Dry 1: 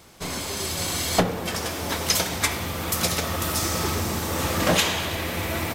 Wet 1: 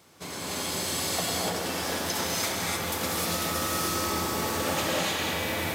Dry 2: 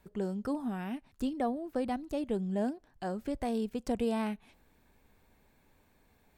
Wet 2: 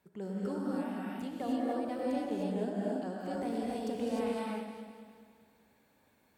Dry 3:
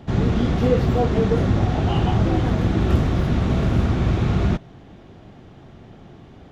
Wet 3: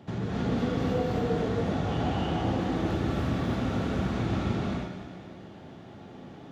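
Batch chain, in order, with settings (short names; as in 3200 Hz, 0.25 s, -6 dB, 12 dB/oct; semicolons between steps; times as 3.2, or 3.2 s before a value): HPF 110 Hz 12 dB/oct; compressor 3:1, threshold -25 dBFS; echo with dull and thin repeats by turns 0.101 s, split 2000 Hz, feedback 71%, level -6 dB; non-linear reverb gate 0.33 s rising, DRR -4.5 dB; gain -7 dB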